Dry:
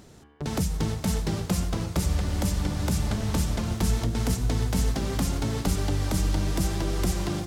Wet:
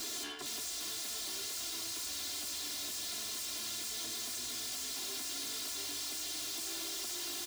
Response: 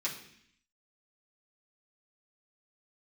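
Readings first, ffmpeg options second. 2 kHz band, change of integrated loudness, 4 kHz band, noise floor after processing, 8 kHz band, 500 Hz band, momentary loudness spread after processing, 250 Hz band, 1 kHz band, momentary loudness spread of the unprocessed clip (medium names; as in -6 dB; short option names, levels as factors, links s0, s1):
-7.5 dB, -9.5 dB, +0.5 dB, -41 dBFS, -0.5 dB, -18.5 dB, 0 LU, -24.0 dB, -14.5 dB, 2 LU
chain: -filter_complex "[0:a]areverse,acompressor=threshold=0.0141:ratio=6,areverse,equalizer=f=250:t=o:w=1:g=4,equalizer=f=1000:t=o:w=1:g=-6,equalizer=f=2000:t=o:w=1:g=-5,equalizer=f=4000:t=o:w=1:g=8,equalizer=f=8000:t=o:w=1:g=7,aecho=1:1:390:0.0891,flanger=delay=9.3:depth=6.1:regen=79:speed=0.53:shape=sinusoidal,acrossover=split=2600|6100[s0][s1][s2];[s0]acompressor=threshold=0.00316:ratio=4[s3];[s1]acompressor=threshold=0.00141:ratio=4[s4];[s2]acompressor=threshold=0.00141:ratio=4[s5];[s3][s4][s5]amix=inputs=3:normalize=0,asplit=2[s6][s7];[s7]highpass=f=720:p=1,volume=11.2,asoftclip=type=tanh:threshold=0.02[s8];[s6][s8]amix=inputs=2:normalize=0,lowpass=f=5200:p=1,volume=0.501,aeval=exprs='0.0282*sin(PI/2*4.47*val(0)/0.0282)':c=same,tiltshelf=f=1100:g=-7.5,aeval=exprs='(tanh(126*val(0)+0.8)-tanh(0.8))/126':c=same,highpass=f=180:p=1,aecho=1:1:2.9:0.94"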